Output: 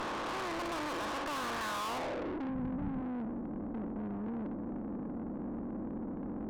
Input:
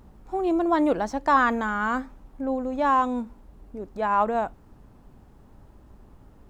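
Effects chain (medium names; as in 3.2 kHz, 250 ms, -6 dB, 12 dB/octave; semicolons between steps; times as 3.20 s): spectral levelling over time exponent 0.2; low-pass sweep 4.6 kHz -> 210 Hz, 1.21–2.56 s; valve stage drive 27 dB, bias 0.6; 2.49–3.01 s: resonant low shelf 220 Hz +9.5 dB, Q 1.5; trim -8.5 dB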